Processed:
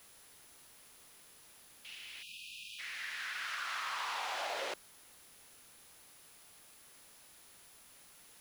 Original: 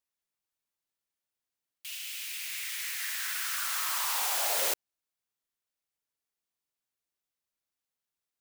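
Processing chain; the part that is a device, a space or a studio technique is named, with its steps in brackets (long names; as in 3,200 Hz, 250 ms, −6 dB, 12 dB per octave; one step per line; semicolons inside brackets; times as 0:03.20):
medium wave at night (band-pass filter 150–3,600 Hz; downward compressor, threshold −37 dBFS, peak gain reduction 6.5 dB; amplitude tremolo 0.24 Hz, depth 50%; steady tone 10,000 Hz −62 dBFS; white noise bed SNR 13 dB)
high-shelf EQ 5,500 Hz −4 dB
0:02.22–0:02.79: time-frequency box erased 240–2,400 Hz
0:03.19–0:03.59: high-pass filter 110 Hz
level +2.5 dB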